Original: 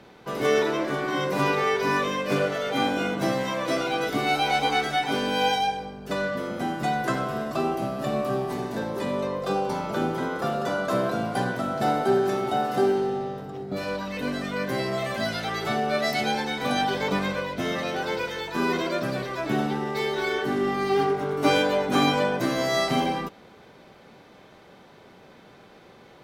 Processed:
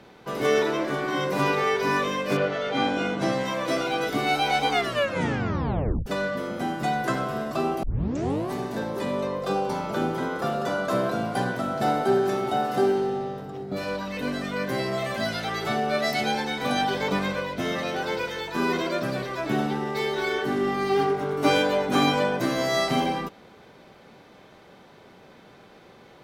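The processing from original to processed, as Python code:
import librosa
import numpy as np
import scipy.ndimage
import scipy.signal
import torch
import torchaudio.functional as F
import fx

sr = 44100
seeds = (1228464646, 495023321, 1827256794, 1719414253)

y = fx.lowpass(x, sr, hz=fx.line((2.36, 3900.0), (3.44, 9900.0)), slope=12, at=(2.36, 3.44), fade=0.02)
y = fx.edit(y, sr, fx.tape_stop(start_s=4.71, length_s=1.35),
    fx.tape_start(start_s=7.83, length_s=0.68), tone=tone)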